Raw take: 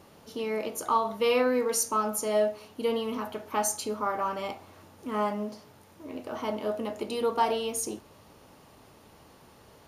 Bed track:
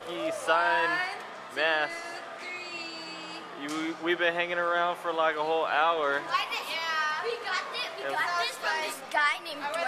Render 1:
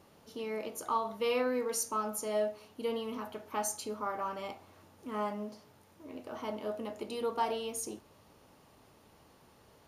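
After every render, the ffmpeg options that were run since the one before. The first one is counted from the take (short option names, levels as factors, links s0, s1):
-af "volume=0.473"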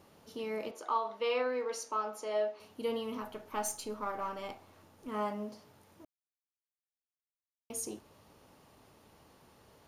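-filter_complex "[0:a]asettb=1/sr,asplit=3[s0][s1][s2];[s0]atrim=end=0.714[s3];[s1]atrim=start=0.71:end=2.6,asetpts=PTS-STARTPTS,afade=t=in:d=0.004:c=qsin,afade=t=out:st=1.886:d=0.004:c=qsin,acrossover=split=300 5700:gain=0.1 1 0.126[s4][s5][s6];[s4][s5][s6]amix=inputs=3:normalize=0[s7];[s2]atrim=start=2.596[s8];[s3][s7]acrossfade=d=0.004:c1=hsin:c2=qsin[s9];[s9][s8]acrossfade=d=0.004:c1=qsin:c2=hsin,asettb=1/sr,asplit=3[s10][s11][s12];[s10]atrim=end=3.224[s13];[s11]atrim=start=3.22:end=5.08,asetpts=PTS-STARTPTS,afade=t=in:d=0.004:c=qsin,afade=t=out:st=1.856:d=0.004:c=qsin,aeval=exprs='if(lt(val(0),0),0.708*val(0),val(0))':c=same[s14];[s12]atrim=start=5.076[s15];[s13][s14]acrossfade=d=0.004:c1=hsin:c2=qsin[s16];[s16][s15]acrossfade=d=0.004:c1=qsin:c2=hsin,asplit=3[s17][s18][s19];[s17]atrim=end=6.05,asetpts=PTS-STARTPTS,afade=t=out:st=6.046:d=0.004:c=hsin[s20];[s18]atrim=start=6.05:end=7.7,asetpts=PTS-STARTPTS,volume=0[s21];[s19]atrim=start=7.7,asetpts=PTS-STARTPTS,afade=t=in:d=0.004:c=hsin[s22];[s20][s21][s22]concat=n=3:v=0:a=1"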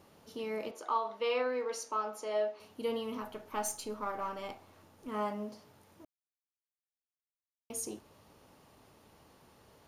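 -af anull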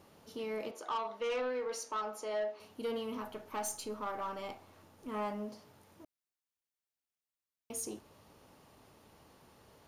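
-af "asoftclip=type=tanh:threshold=0.0316"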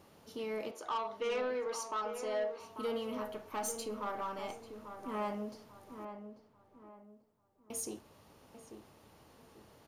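-filter_complex "[0:a]asplit=2[s0][s1];[s1]adelay=842,lowpass=f=1600:p=1,volume=0.376,asplit=2[s2][s3];[s3]adelay=842,lowpass=f=1600:p=1,volume=0.36,asplit=2[s4][s5];[s5]adelay=842,lowpass=f=1600:p=1,volume=0.36,asplit=2[s6][s7];[s7]adelay=842,lowpass=f=1600:p=1,volume=0.36[s8];[s0][s2][s4][s6][s8]amix=inputs=5:normalize=0"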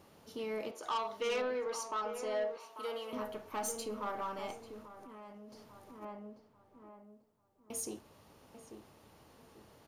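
-filter_complex "[0:a]asettb=1/sr,asplit=3[s0][s1][s2];[s0]atrim=end=0.834[s3];[s1]atrim=start=0.83:end=1.42,asetpts=PTS-STARTPTS,afade=t=in:d=0.004:c=qsin,afade=t=out:st=0.586:d=0.004:c=qsin,highshelf=f=3700:g=9.5[s4];[s2]atrim=start=1.416[s5];[s3][s4]acrossfade=d=0.004:c1=hsin:c2=qsin[s6];[s6][s5]acrossfade=d=0.004:c1=qsin:c2=hsin,asettb=1/sr,asplit=3[s7][s8][s9];[s7]atrim=end=2.574[s10];[s8]atrim=start=2.57:end=3.13,asetpts=PTS-STARTPTS,afade=t=in:d=0.004:c=qsin,afade=t=out:st=0.556:d=0.004:c=qsin,highpass=500[s11];[s9]atrim=start=3.126[s12];[s10][s11]acrossfade=d=0.004:c1=hsin:c2=qsin[s13];[s13][s12]acrossfade=d=0.004:c1=qsin:c2=hsin,asplit=3[s14][s15][s16];[s14]afade=t=out:st=4.81:d=0.02[s17];[s15]acompressor=threshold=0.00398:ratio=16:attack=3.2:release=140:knee=1:detection=peak,afade=t=in:st=4.81:d=0.02,afade=t=out:st=6.01:d=0.02[s18];[s16]afade=t=in:st=6.01:d=0.02[s19];[s17][s18][s19]amix=inputs=3:normalize=0"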